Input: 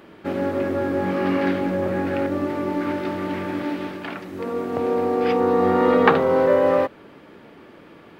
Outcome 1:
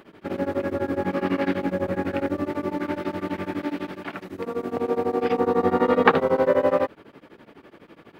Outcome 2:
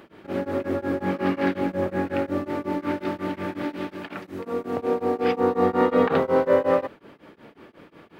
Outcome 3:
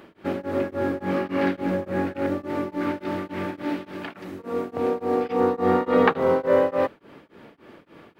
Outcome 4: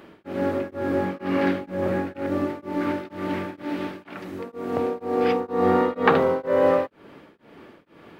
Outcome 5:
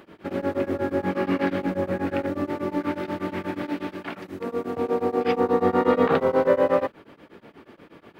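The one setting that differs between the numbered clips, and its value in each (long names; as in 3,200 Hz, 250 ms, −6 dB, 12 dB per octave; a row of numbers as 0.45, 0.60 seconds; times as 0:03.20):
tremolo along a rectified sine, nulls at: 12, 5.5, 3.5, 2.1, 8.3 Hertz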